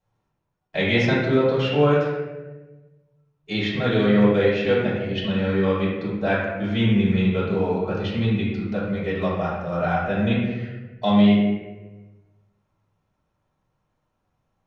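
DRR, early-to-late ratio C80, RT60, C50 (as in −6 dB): −9.0 dB, 3.0 dB, 1.2 s, 0.5 dB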